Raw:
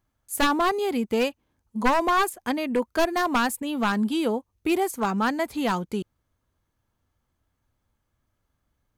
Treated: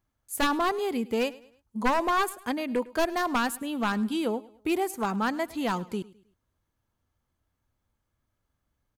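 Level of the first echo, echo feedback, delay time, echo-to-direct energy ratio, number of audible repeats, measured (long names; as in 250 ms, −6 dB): −20.5 dB, 38%, 105 ms, −20.0 dB, 2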